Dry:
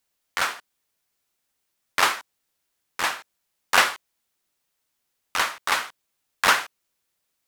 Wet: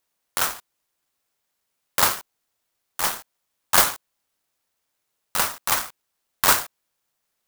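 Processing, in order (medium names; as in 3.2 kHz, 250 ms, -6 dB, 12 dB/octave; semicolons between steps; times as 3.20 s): high-pass 520 Hz; sampling jitter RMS 0.12 ms; trim +1.5 dB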